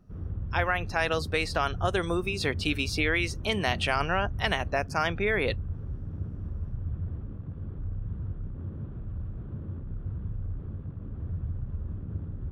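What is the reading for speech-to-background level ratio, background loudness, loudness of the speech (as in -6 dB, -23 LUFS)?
8.5 dB, -37.0 LUFS, -28.5 LUFS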